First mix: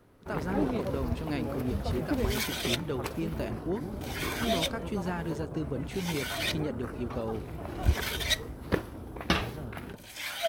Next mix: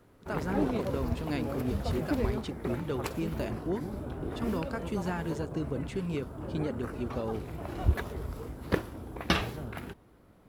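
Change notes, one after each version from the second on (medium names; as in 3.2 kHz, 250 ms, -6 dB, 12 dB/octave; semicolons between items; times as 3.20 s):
second sound: muted; master: remove band-stop 7.2 kHz, Q 12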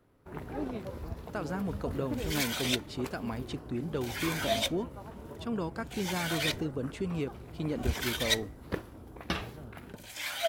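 speech: entry +1.05 s; first sound -6.5 dB; second sound: unmuted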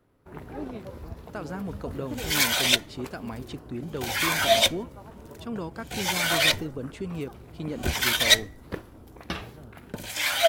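second sound +10.5 dB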